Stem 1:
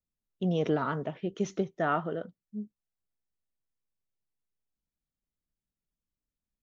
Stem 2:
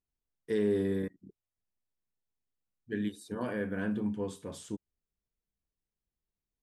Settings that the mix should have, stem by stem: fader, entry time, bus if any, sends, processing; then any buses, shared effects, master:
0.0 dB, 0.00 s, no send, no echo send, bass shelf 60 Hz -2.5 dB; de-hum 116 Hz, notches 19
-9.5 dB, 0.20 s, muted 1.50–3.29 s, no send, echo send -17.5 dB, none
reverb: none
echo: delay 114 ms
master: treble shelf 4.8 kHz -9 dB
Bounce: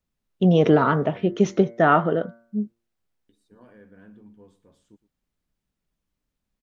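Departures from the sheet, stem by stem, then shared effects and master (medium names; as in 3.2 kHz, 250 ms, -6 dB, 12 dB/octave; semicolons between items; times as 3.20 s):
stem 1 0.0 dB -> +12.0 dB; stem 2 -9.5 dB -> -16.0 dB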